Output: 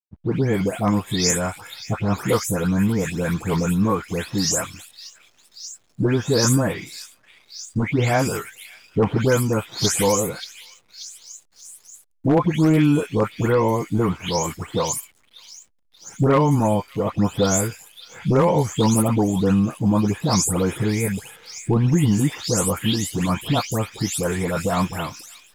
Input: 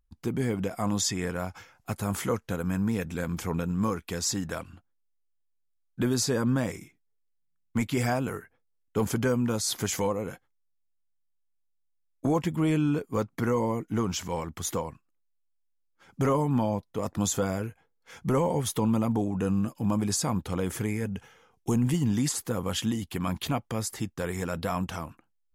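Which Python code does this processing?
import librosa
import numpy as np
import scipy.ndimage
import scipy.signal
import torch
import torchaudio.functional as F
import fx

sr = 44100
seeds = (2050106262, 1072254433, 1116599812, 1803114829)

y = fx.spec_delay(x, sr, highs='late', ms=300)
y = 10.0 ** (-17.5 / 20.0) * (np.abs((y / 10.0 ** (-17.5 / 20.0) + 3.0) % 4.0 - 2.0) - 1.0)
y = fx.echo_stepped(y, sr, ms=583, hz=3300.0, octaves=0.7, feedback_pct=70, wet_db=-9.0)
y = fx.backlash(y, sr, play_db=-55.0)
y = y * librosa.db_to_amplitude(9.0)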